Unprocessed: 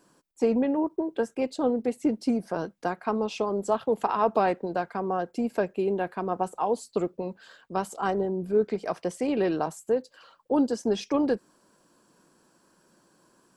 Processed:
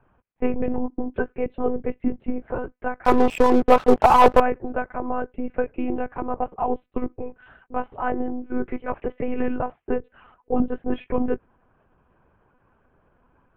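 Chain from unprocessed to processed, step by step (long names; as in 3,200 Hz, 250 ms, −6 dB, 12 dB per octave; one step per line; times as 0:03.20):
single-sideband voice off tune −55 Hz 240–2,600 Hz
one-pitch LPC vocoder at 8 kHz 250 Hz
0:03.05–0:04.40: leveller curve on the samples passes 3
level +3 dB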